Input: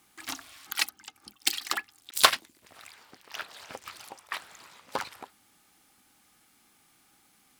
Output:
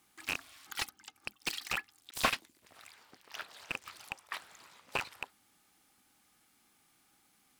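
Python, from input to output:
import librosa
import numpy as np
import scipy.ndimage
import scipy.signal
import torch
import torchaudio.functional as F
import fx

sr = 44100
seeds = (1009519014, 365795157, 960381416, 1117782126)

y = fx.rattle_buzz(x, sr, strikes_db=-51.0, level_db=-9.0)
y = fx.slew_limit(y, sr, full_power_hz=270.0)
y = F.gain(torch.from_numpy(y), -5.5).numpy()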